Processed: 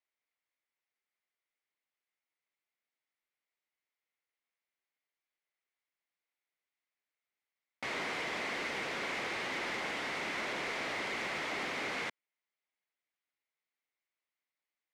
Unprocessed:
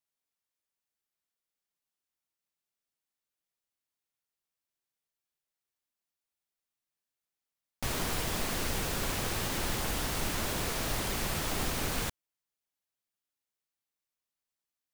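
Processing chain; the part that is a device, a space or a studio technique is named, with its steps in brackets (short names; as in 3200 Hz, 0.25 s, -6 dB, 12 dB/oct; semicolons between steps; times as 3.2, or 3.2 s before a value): intercom (BPF 310–3600 Hz; bell 2100 Hz +10 dB 0.34 oct; soft clip -30.5 dBFS, distortion -17 dB)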